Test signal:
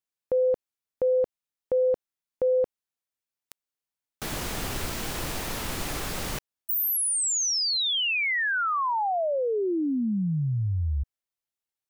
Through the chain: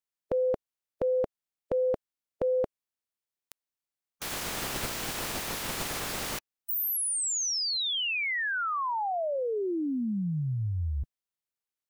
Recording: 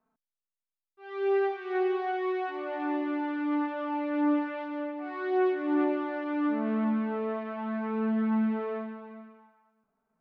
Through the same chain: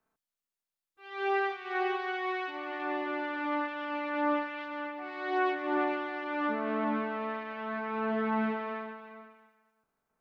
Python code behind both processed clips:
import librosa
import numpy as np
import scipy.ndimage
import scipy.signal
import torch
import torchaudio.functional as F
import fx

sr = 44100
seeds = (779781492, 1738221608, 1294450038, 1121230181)

y = fx.spec_clip(x, sr, under_db=15)
y = y * 10.0 ** (-3.0 / 20.0)